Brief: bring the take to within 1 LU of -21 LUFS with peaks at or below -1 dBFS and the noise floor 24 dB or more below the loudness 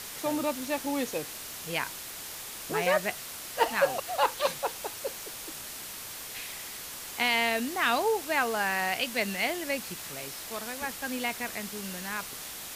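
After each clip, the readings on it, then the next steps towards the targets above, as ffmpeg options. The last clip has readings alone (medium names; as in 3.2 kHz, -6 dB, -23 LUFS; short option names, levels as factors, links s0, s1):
noise floor -41 dBFS; noise floor target -55 dBFS; loudness -31.0 LUFS; peak level -12.5 dBFS; loudness target -21.0 LUFS
-> -af "afftdn=nr=14:nf=-41"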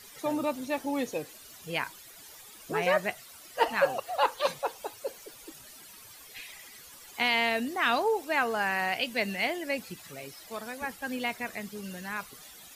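noise floor -50 dBFS; noise floor target -55 dBFS
-> -af "afftdn=nr=6:nf=-50"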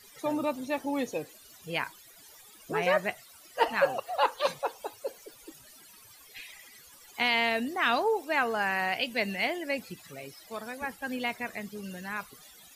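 noise floor -54 dBFS; noise floor target -55 dBFS
-> -af "afftdn=nr=6:nf=-54"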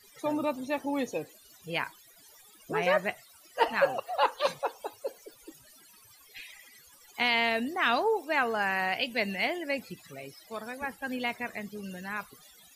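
noise floor -57 dBFS; loudness -30.5 LUFS; peak level -13.0 dBFS; loudness target -21.0 LUFS
-> -af "volume=2.99"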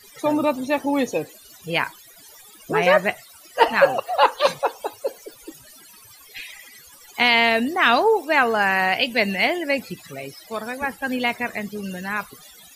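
loudness -21.0 LUFS; peak level -3.5 dBFS; noise floor -48 dBFS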